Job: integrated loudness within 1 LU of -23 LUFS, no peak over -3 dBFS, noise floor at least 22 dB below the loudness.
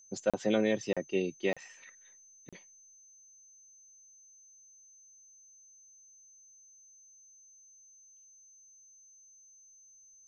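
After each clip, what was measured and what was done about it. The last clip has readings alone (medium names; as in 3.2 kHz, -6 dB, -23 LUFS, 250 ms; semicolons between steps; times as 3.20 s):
dropouts 4; longest dropout 36 ms; steady tone 6.2 kHz; tone level -56 dBFS; loudness -32.0 LUFS; peak level -15.0 dBFS; loudness target -23.0 LUFS
-> interpolate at 0.30/0.93/1.53/2.49 s, 36 ms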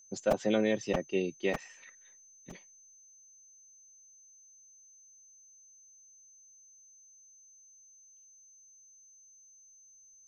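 dropouts 0; steady tone 6.2 kHz; tone level -56 dBFS
-> band-stop 6.2 kHz, Q 30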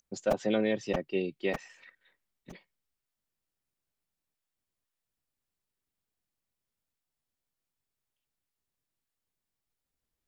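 steady tone not found; loudness -31.5 LUFS; peak level -13.5 dBFS; loudness target -23.0 LUFS
-> trim +8.5 dB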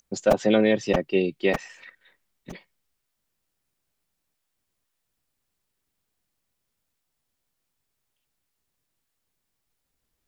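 loudness -23.0 LUFS; peak level -5.0 dBFS; noise floor -79 dBFS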